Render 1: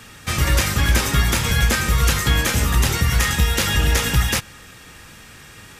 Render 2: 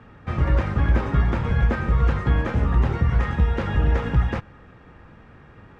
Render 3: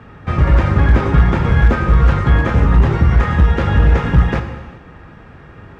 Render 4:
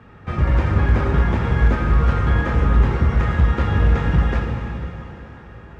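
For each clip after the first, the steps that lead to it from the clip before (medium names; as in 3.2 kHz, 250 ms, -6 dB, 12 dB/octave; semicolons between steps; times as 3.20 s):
low-pass 1.1 kHz 12 dB/octave; trim -1 dB
gated-style reverb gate 450 ms falling, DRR 6 dB; one-sided clip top -13 dBFS; trim +7.5 dB
plate-style reverb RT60 3.8 s, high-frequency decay 0.95×, DRR 2.5 dB; trim -6.5 dB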